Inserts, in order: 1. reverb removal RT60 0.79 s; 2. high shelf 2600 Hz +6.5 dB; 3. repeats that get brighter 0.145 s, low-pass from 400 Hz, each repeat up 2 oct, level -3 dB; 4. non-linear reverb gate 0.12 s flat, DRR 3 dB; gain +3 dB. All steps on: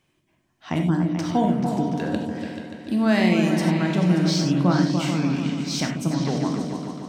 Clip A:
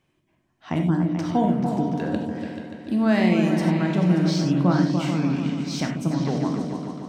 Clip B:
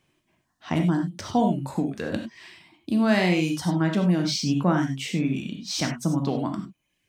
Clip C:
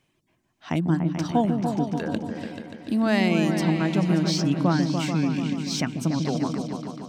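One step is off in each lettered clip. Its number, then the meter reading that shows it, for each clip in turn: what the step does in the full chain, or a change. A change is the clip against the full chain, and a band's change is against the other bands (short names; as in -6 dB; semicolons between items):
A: 2, 8 kHz band -5.0 dB; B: 3, echo-to-direct 0.5 dB to -3.0 dB; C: 4, echo-to-direct 0.5 dB to -4.0 dB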